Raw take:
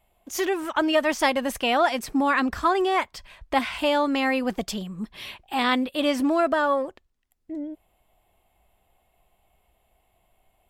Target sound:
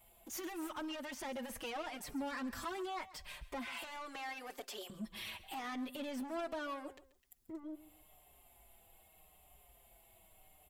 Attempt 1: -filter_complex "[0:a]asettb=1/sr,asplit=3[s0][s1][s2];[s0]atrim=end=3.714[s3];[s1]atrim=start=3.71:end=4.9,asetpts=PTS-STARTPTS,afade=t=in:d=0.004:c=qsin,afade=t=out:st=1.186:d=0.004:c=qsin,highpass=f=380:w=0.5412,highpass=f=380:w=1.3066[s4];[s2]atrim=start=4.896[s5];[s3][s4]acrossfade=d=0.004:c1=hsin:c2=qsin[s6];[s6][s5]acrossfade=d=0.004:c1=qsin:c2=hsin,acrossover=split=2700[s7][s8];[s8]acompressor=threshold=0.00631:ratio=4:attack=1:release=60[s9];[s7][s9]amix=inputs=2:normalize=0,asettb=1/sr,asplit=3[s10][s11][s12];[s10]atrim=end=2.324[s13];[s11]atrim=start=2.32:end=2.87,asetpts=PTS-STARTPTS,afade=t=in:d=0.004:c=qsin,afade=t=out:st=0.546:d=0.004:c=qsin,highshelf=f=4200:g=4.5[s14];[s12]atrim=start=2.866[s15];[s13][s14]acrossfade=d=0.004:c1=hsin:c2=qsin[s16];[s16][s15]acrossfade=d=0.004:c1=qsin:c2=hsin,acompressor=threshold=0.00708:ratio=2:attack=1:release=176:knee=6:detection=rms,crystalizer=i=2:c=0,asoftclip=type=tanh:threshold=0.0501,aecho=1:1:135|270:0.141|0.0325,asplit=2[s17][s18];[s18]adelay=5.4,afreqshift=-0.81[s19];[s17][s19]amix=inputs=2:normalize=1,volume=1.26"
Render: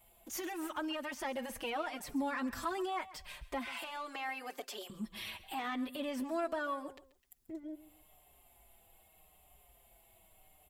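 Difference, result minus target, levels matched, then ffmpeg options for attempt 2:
saturation: distortion -15 dB
-filter_complex "[0:a]asettb=1/sr,asplit=3[s0][s1][s2];[s0]atrim=end=3.714[s3];[s1]atrim=start=3.71:end=4.9,asetpts=PTS-STARTPTS,afade=t=in:d=0.004:c=qsin,afade=t=out:st=1.186:d=0.004:c=qsin,highpass=f=380:w=0.5412,highpass=f=380:w=1.3066[s4];[s2]atrim=start=4.896[s5];[s3][s4]acrossfade=d=0.004:c1=hsin:c2=qsin[s6];[s6][s5]acrossfade=d=0.004:c1=qsin:c2=hsin,acrossover=split=2700[s7][s8];[s8]acompressor=threshold=0.00631:ratio=4:attack=1:release=60[s9];[s7][s9]amix=inputs=2:normalize=0,asettb=1/sr,asplit=3[s10][s11][s12];[s10]atrim=end=2.324[s13];[s11]atrim=start=2.32:end=2.87,asetpts=PTS-STARTPTS,afade=t=in:d=0.004:c=qsin,afade=t=out:st=0.546:d=0.004:c=qsin,highshelf=f=4200:g=4.5[s14];[s12]atrim=start=2.866[s15];[s13][s14]acrossfade=d=0.004:c1=hsin:c2=qsin[s16];[s16][s15]acrossfade=d=0.004:c1=qsin:c2=hsin,acompressor=threshold=0.00708:ratio=2:attack=1:release=176:knee=6:detection=rms,crystalizer=i=2:c=0,asoftclip=type=tanh:threshold=0.0133,aecho=1:1:135|270:0.141|0.0325,asplit=2[s17][s18];[s18]adelay=5.4,afreqshift=-0.81[s19];[s17][s19]amix=inputs=2:normalize=1,volume=1.26"

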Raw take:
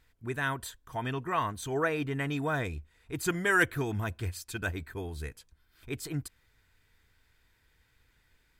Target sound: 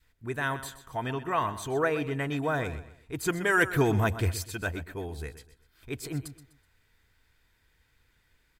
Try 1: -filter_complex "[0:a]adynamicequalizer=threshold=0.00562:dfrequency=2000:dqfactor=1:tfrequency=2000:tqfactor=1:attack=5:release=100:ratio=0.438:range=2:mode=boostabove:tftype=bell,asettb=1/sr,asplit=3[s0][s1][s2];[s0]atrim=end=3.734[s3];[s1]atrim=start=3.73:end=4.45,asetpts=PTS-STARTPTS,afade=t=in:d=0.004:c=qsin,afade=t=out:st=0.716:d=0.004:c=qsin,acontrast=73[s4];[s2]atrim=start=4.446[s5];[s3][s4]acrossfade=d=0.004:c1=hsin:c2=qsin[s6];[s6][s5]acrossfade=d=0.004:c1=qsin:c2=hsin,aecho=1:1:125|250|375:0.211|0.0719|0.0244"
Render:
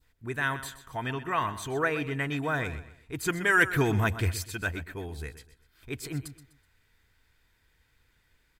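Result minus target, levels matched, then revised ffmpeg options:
500 Hz band -3.0 dB
-filter_complex "[0:a]adynamicequalizer=threshold=0.00562:dfrequency=600:dqfactor=1:tfrequency=600:tqfactor=1:attack=5:release=100:ratio=0.438:range=2:mode=boostabove:tftype=bell,asettb=1/sr,asplit=3[s0][s1][s2];[s0]atrim=end=3.734[s3];[s1]atrim=start=3.73:end=4.45,asetpts=PTS-STARTPTS,afade=t=in:d=0.004:c=qsin,afade=t=out:st=0.716:d=0.004:c=qsin,acontrast=73[s4];[s2]atrim=start=4.446[s5];[s3][s4]acrossfade=d=0.004:c1=hsin:c2=qsin[s6];[s6][s5]acrossfade=d=0.004:c1=qsin:c2=hsin,aecho=1:1:125|250|375:0.211|0.0719|0.0244"

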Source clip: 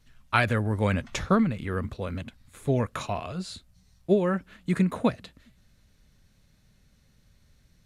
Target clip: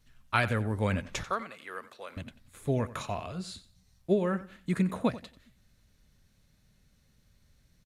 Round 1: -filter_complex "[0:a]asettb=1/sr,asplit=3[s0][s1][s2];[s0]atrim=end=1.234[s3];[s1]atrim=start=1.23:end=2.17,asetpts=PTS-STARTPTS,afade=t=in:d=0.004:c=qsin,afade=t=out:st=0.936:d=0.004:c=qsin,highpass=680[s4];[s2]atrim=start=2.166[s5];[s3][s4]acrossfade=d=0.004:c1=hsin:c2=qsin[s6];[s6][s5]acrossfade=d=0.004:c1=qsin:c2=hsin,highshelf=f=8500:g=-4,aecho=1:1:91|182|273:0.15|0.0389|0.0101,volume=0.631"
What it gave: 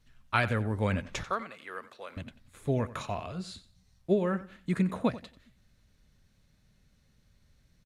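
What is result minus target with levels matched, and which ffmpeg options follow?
8 kHz band -3.0 dB
-filter_complex "[0:a]asettb=1/sr,asplit=3[s0][s1][s2];[s0]atrim=end=1.234[s3];[s1]atrim=start=1.23:end=2.17,asetpts=PTS-STARTPTS,afade=t=in:d=0.004:c=qsin,afade=t=out:st=0.936:d=0.004:c=qsin,highpass=680[s4];[s2]atrim=start=2.166[s5];[s3][s4]acrossfade=d=0.004:c1=hsin:c2=qsin[s6];[s6][s5]acrossfade=d=0.004:c1=qsin:c2=hsin,highshelf=f=8500:g=3.5,aecho=1:1:91|182|273:0.15|0.0389|0.0101,volume=0.631"

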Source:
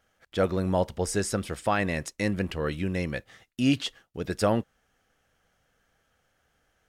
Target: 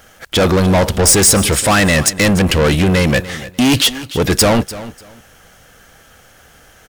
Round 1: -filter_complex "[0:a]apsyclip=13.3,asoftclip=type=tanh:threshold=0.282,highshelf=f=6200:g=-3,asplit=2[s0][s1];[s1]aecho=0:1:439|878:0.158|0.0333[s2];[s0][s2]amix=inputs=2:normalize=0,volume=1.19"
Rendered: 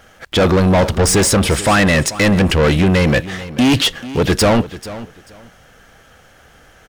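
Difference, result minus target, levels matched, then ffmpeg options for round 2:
echo 144 ms late; 8 kHz band -5.0 dB
-filter_complex "[0:a]apsyclip=13.3,asoftclip=type=tanh:threshold=0.282,highshelf=f=6200:g=7.5,asplit=2[s0][s1];[s1]aecho=0:1:295|590:0.158|0.0333[s2];[s0][s2]amix=inputs=2:normalize=0,volume=1.19"

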